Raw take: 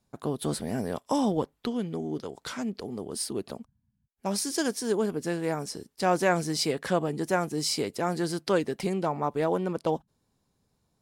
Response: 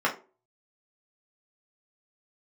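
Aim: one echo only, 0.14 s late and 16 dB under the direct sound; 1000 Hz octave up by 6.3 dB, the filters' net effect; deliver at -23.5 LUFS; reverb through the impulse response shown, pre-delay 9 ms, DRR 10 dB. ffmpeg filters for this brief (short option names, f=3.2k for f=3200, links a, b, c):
-filter_complex "[0:a]equalizer=f=1k:t=o:g=8.5,aecho=1:1:140:0.158,asplit=2[a][b];[1:a]atrim=start_sample=2205,adelay=9[c];[b][c]afir=irnorm=-1:irlink=0,volume=-23.5dB[d];[a][d]amix=inputs=2:normalize=0,volume=3.5dB"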